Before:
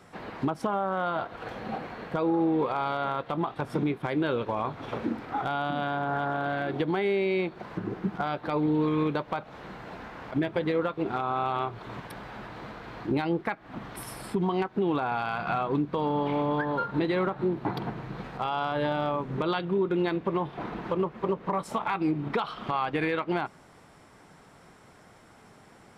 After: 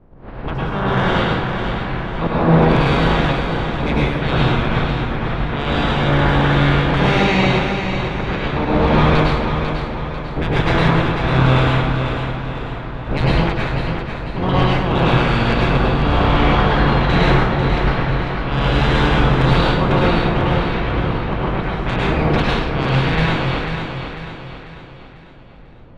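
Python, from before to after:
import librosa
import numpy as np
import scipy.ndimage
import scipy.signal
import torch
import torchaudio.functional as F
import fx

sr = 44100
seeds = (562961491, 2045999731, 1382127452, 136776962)

y = fx.spec_clip(x, sr, under_db=29)
y = fx.riaa(y, sr, side='playback')
y = fx.hum_notches(y, sr, base_hz=50, count=3)
y = fx.auto_swell(y, sr, attack_ms=134.0)
y = 10.0 ** (-18.5 / 20.0) * np.tanh(y / 10.0 ** (-18.5 / 20.0))
y = fx.env_lowpass(y, sr, base_hz=600.0, full_db=-24.0)
y = fx.echo_feedback(y, sr, ms=495, feedback_pct=46, wet_db=-7.0)
y = fx.rev_plate(y, sr, seeds[0], rt60_s=0.78, hf_ratio=0.85, predelay_ms=90, drr_db=-4.5)
y = y * 10.0 ** (6.5 / 20.0)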